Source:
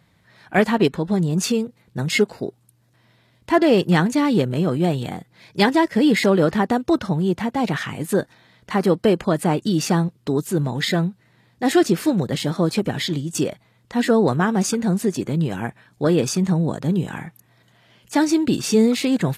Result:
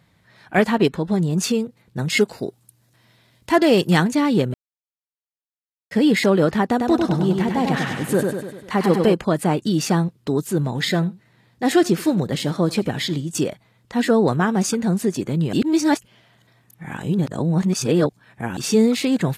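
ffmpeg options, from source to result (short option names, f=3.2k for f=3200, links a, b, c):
-filter_complex "[0:a]asettb=1/sr,asplit=3[a][b][c];[a]atrim=end=2.174[d];[b]atrim=start=2.17:end=4.04,asetpts=PTS-STARTPTS,afade=t=in:d=0.004:c=qsin,afade=t=out:st=1.866:d=0.004:c=qsin,highshelf=f=3.7k:g=7.5[e];[c]atrim=start=4.036[f];[d][e]acrossfade=d=0.004:c1=hsin:c2=qsin[g];[g][f]acrossfade=d=0.004:c1=qsin:c2=hsin,asettb=1/sr,asplit=3[h][i][j];[h]atrim=end=6.704[k];[i]atrim=start=6.7:end=9.14,asetpts=PTS-STARTPTS,afade=t=in:d=0.004:c=qsin,afade=t=out:st=2.436:d=0.004:c=qsin,aecho=1:1:99|198|297|396|495|594|693:0.631|0.341|0.184|0.0994|0.0537|0.029|0.0156,atrim=end_sample=107604[l];[j]atrim=start=9.136[m];[k][l]acrossfade=d=0.004:c1=hsin:c2=qsin[n];[n][m]acrossfade=d=0.004:c1=qsin:c2=hsin,asettb=1/sr,asplit=3[o][p][q];[o]atrim=end=10.614[r];[p]atrim=start=10.61:end=13.25,asetpts=PTS-STARTPTS,afade=t=in:d=0.004:c=qsin,afade=t=out:st=2.636:d=0.004:c=qsin,aecho=1:1:82:0.0841,atrim=end_sample=116424[s];[q]atrim=start=13.246[t];[r][s]acrossfade=d=0.004:c1=hsin:c2=qsin[u];[u][t]acrossfade=d=0.004:c1=qsin:c2=hsin,asplit=5[v][w][x][y][z];[v]atrim=end=4.54,asetpts=PTS-STARTPTS,afade=t=out:st=4.536:d=0.004:c=hsin[aa];[w]atrim=start=4.54:end=5.91,asetpts=PTS-STARTPTS,volume=0[ab];[x]atrim=start=5.91:end=15.532,asetpts=PTS-STARTPTS,afade=t=in:d=0.004:c=hsin[ac];[y]atrim=start=15.528:end=18.572,asetpts=PTS-STARTPTS,areverse[ad];[z]atrim=start=18.568[ae];[aa][ab][ac]concat=n=3:v=0:a=1[af];[af][ad]acrossfade=d=0.004:c1=hsin:c2=hsin[ag];[ag][ae]acrossfade=d=0.004:c1=hsin:c2=hsin"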